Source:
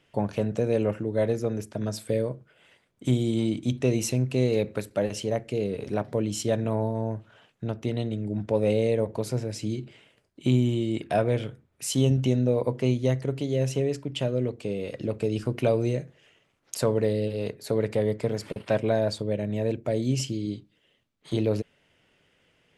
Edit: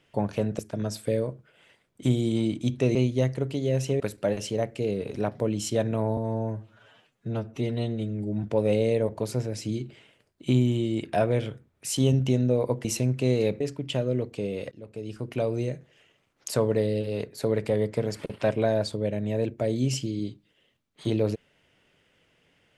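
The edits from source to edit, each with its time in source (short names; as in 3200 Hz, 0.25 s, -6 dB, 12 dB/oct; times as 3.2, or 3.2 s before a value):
0.59–1.61 cut
3.97–4.73 swap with 12.82–13.87
6.9–8.41 stretch 1.5×
14.98–16.79 fade in equal-power, from -20 dB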